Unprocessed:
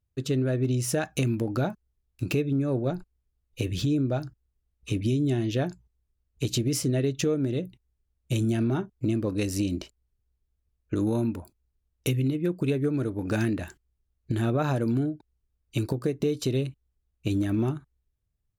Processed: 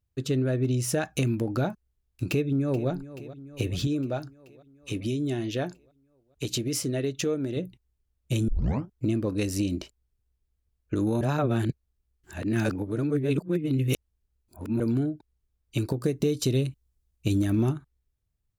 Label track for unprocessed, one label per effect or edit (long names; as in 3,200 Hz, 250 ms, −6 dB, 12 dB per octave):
2.280000	2.900000	delay throw 430 ms, feedback 70%, level −15.5 dB
3.870000	7.570000	low-shelf EQ 220 Hz −7.5 dB
8.480000	8.480000	tape start 0.41 s
11.210000	14.800000	reverse
15.990000	17.730000	bass and treble bass +3 dB, treble +6 dB